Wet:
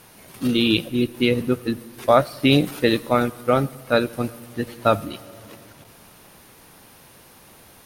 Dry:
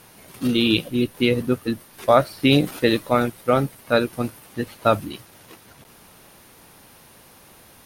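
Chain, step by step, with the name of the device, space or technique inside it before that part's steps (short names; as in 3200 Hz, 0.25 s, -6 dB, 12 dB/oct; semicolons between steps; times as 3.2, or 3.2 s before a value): compressed reverb return (on a send at -8.5 dB: reverb RT60 1.3 s, pre-delay 81 ms + compressor, threshold -30 dBFS, peak gain reduction 17.5 dB)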